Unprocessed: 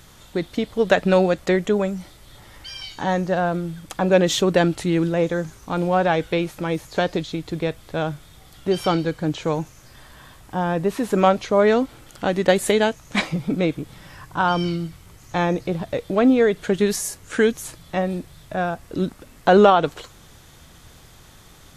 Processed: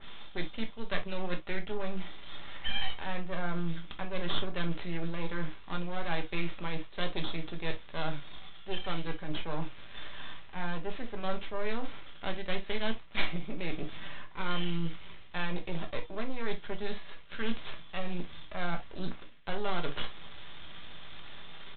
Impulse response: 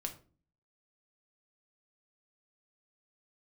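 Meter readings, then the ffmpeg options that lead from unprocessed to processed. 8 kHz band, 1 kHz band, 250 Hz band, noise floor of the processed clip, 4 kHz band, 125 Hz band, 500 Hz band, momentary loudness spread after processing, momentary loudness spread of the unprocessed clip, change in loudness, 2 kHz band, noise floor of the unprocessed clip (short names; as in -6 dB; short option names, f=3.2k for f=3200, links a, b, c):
under -40 dB, -17.0 dB, -17.0 dB, -44 dBFS, -8.0 dB, -13.0 dB, -20.0 dB, 11 LU, 13 LU, -16.5 dB, -11.0 dB, -48 dBFS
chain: -filter_complex "[0:a]lowshelf=f=200:g=-5.5,areverse,acompressor=threshold=-32dB:ratio=8,areverse,crystalizer=i=8.5:c=0,aresample=8000,aeval=exprs='max(val(0),0)':c=same,aresample=44100[a];[1:a]atrim=start_sample=2205,atrim=end_sample=3087[b];[a][b]afir=irnorm=-1:irlink=0,adynamicequalizer=threshold=0.00316:dfrequency=2400:dqfactor=0.7:tfrequency=2400:tqfactor=0.7:attack=5:release=100:ratio=0.375:range=2:mode=cutabove:tftype=highshelf"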